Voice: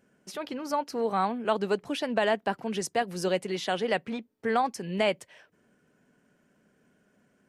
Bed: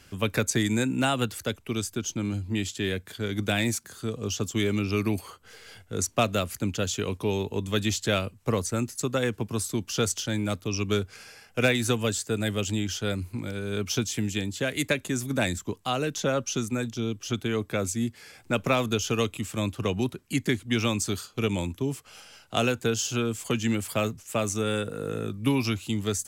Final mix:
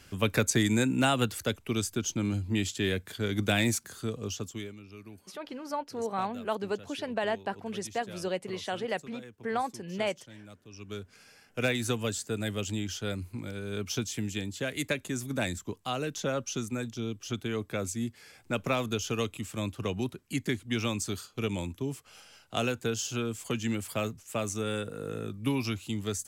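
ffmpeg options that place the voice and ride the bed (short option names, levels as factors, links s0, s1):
-filter_complex "[0:a]adelay=5000,volume=0.562[s0];[1:a]volume=6.31,afade=t=out:st=3.9:d=0.85:silence=0.0891251,afade=t=in:st=10.68:d=1.09:silence=0.149624[s1];[s0][s1]amix=inputs=2:normalize=0"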